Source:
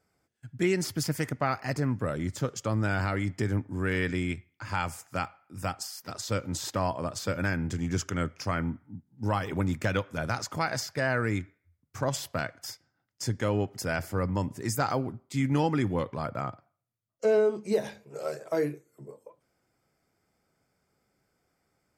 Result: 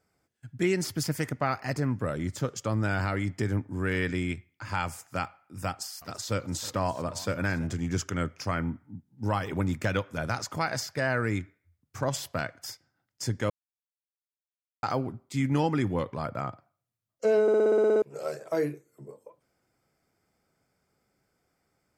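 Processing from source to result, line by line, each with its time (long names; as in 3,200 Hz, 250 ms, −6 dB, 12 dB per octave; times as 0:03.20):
0:05.69–0:07.74: feedback echo with a swinging delay time 328 ms, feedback 45%, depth 202 cents, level −18.5 dB
0:13.50–0:14.83: silence
0:17.42: stutter in place 0.06 s, 10 plays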